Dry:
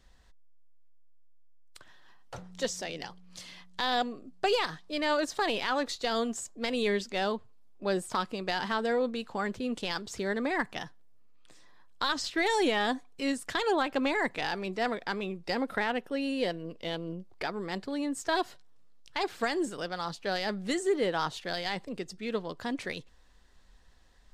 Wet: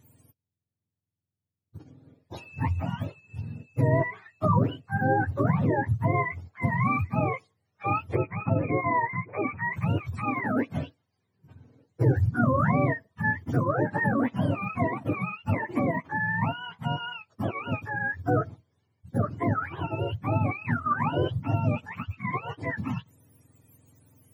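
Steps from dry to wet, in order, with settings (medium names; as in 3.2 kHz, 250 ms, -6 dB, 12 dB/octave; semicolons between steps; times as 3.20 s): spectrum inverted on a logarithmic axis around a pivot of 690 Hz; 8.15–9.73 s: steep low-pass 2.5 kHz 96 dB/octave; trim +4.5 dB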